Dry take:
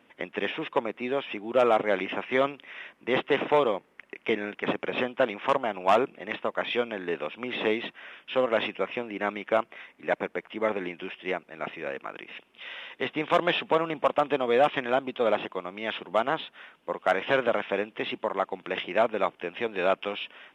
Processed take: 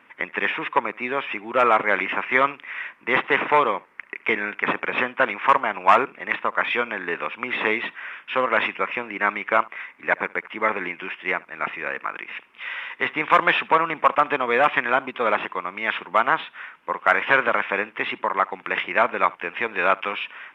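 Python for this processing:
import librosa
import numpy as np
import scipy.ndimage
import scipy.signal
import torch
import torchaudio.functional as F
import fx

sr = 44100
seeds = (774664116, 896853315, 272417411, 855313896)

y = fx.band_shelf(x, sr, hz=1500.0, db=11.0, octaves=1.7)
y = y + 10.0 ** (-23.5 / 20.0) * np.pad(y, (int(72 * sr / 1000.0), 0))[:len(y)]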